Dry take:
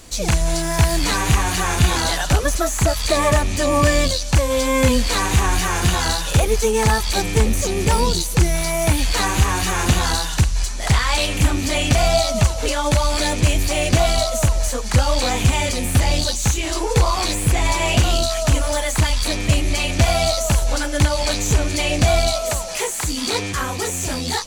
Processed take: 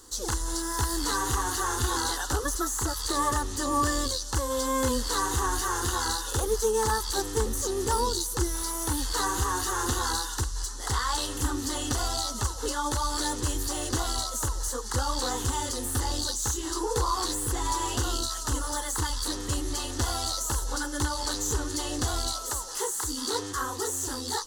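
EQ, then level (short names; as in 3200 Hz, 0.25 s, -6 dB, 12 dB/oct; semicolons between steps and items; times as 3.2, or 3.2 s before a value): low shelf 150 Hz -8.5 dB; fixed phaser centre 640 Hz, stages 6; -4.5 dB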